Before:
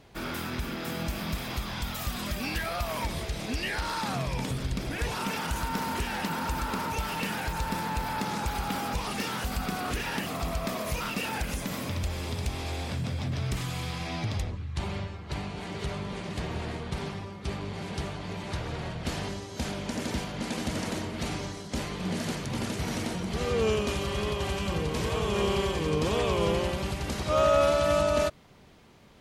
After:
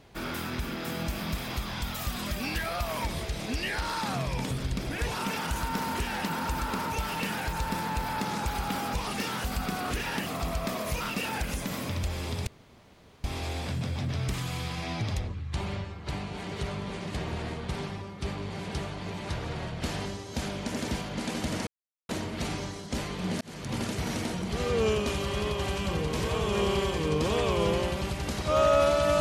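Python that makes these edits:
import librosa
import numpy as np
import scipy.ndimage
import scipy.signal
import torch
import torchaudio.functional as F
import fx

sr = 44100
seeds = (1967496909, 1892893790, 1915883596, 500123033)

y = fx.edit(x, sr, fx.insert_room_tone(at_s=12.47, length_s=0.77),
    fx.insert_silence(at_s=20.9, length_s=0.42),
    fx.fade_in_span(start_s=22.22, length_s=0.32), tone=tone)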